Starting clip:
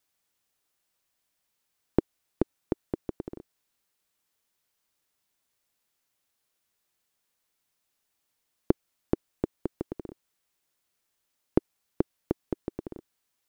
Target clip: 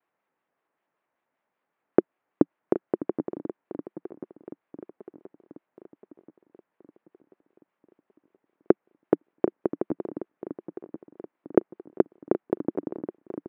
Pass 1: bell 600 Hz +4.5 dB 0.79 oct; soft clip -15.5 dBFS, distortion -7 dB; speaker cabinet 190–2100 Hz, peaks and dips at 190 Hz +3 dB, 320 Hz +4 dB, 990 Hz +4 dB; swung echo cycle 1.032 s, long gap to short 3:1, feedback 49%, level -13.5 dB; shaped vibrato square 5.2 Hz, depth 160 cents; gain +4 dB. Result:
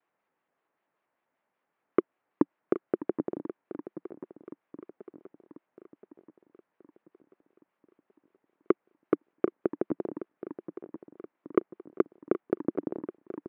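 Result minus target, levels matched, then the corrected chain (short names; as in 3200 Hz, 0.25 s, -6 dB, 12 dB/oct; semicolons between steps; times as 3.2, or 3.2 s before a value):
soft clip: distortion +14 dB
bell 600 Hz +4.5 dB 0.79 oct; soft clip -3.5 dBFS, distortion -21 dB; speaker cabinet 190–2100 Hz, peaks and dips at 190 Hz +3 dB, 320 Hz +4 dB, 990 Hz +4 dB; swung echo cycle 1.032 s, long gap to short 3:1, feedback 49%, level -13.5 dB; shaped vibrato square 5.2 Hz, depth 160 cents; gain +4 dB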